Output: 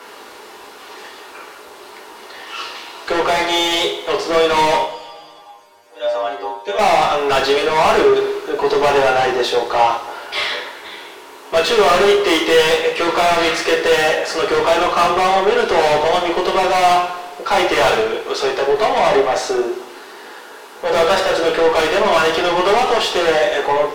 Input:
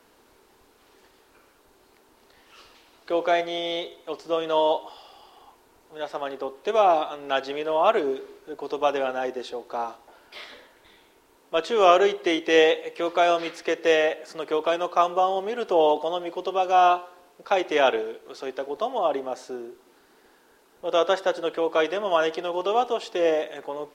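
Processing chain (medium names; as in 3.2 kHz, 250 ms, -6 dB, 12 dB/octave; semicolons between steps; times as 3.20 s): 4.84–6.79 s: inharmonic resonator 96 Hz, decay 0.63 s, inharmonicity 0.002; overdrive pedal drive 34 dB, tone 4.4 kHz, clips at -3.5 dBFS; two-slope reverb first 0.41 s, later 1.8 s, from -19 dB, DRR -1.5 dB; trim -6.5 dB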